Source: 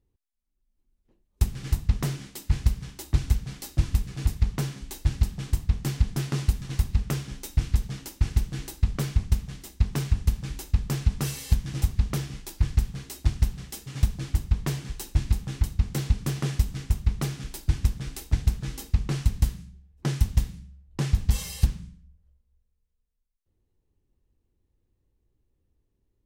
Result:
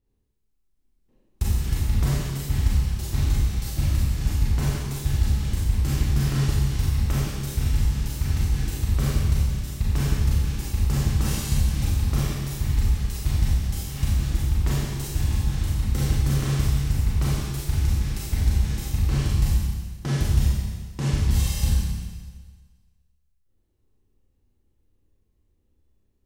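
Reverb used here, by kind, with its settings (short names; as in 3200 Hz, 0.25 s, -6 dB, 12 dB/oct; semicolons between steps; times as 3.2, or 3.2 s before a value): Schroeder reverb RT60 1.5 s, combs from 29 ms, DRR -7 dB; gain -3.5 dB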